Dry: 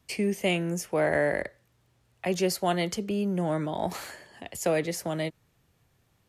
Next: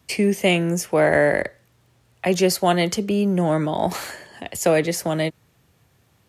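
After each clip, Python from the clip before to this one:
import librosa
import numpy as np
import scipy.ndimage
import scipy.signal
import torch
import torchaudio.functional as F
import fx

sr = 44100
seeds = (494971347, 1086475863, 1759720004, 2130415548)

y = scipy.signal.sosfilt(scipy.signal.butter(2, 58.0, 'highpass', fs=sr, output='sos'), x)
y = y * librosa.db_to_amplitude(8.0)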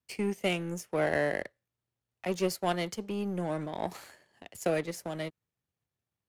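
y = fx.power_curve(x, sr, exponent=1.4)
y = y * librosa.db_to_amplitude(-9.0)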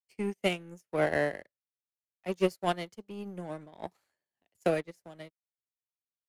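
y = fx.upward_expand(x, sr, threshold_db=-46.0, expansion=2.5)
y = y * librosa.db_to_amplitude(4.5)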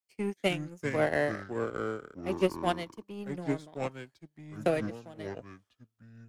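y = fx.echo_pitch(x, sr, ms=246, semitones=-5, count=2, db_per_echo=-6.0)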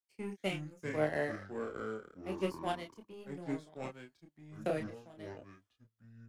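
y = fx.chorus_voices(x, sr, voices=2, hz=0.32, base_ms=29, depth_ms=3.7, mix_pct=40)
y = y * librosa.db_to_amplitude(-4.0)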